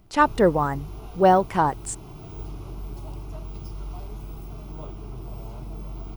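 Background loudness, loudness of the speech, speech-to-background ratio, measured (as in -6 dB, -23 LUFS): -39.0 LUFS, -21.0 LUFS, 18.0 dB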